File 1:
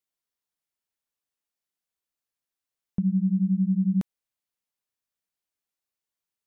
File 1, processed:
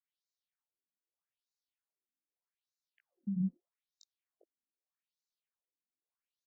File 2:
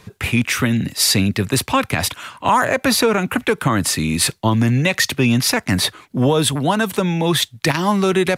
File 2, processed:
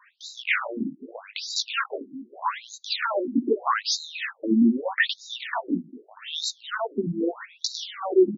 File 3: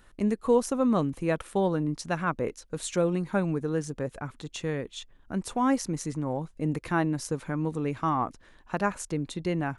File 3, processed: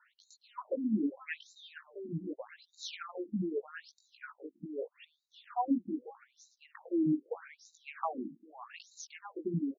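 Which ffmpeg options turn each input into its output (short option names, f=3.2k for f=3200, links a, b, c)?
-af "flanger=delay=17:depth=2.4:speed=2.6,aecho=1:1:401:0.15,afftfilt=real='re*between(b*sr/1024,240*pow(5300/240,0.5+0.5*sin(2*PI*0.81*pts/sr))/1.41,240*pow(5300/240,0.5+0.5*sin(2*PI*0.81*pts/sr))*1.41)':imag='im*between(b*sr/1024,240*pow(5300/240,0.5+0.5*sin(2*PI*0.81*pts/sr))/1.41,240*pow(5300/240,0.5+0.5*sin(2*PI*0.81*pts/sr))*1.41)':win_size=1024:overlap=0.75,volume=2dB"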